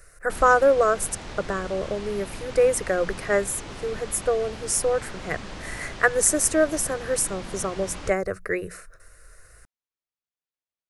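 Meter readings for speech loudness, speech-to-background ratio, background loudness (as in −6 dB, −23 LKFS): −24.0 LKFS, 14.5 dB, −38.5 LKFS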